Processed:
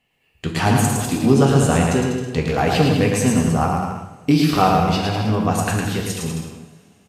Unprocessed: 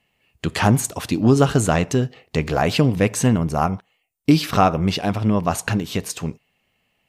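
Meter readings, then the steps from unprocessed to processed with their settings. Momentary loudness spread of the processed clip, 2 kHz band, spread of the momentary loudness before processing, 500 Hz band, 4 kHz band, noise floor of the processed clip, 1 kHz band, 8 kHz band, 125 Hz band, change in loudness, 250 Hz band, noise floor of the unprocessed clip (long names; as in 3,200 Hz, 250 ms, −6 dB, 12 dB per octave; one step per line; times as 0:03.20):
12 LU, +1.5 dB, 10 LU, +1.5 dB, +1.5 dB, −62 dBFS, +2.5 dB, +1.5 dB, +1.5 dB, +1.5 dB, +1.5 dB, −70 dBFS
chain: on a send: bouncing-ball delay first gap 110 ms, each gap 0.8×, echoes 5
on the sum: coupled-rooms reverb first 0.53 s, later 3 s, from −22 dB, DRR 1.5 dB
level −3 dB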